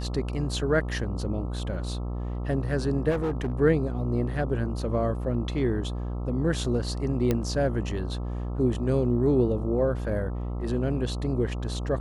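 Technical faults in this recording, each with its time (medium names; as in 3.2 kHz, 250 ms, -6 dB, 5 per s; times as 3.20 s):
buzz 60 Hz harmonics 22 -31 dBFS
3.10–3.53 s: clipped -23.5 dBFS
7.31 s: pop -12 dBFS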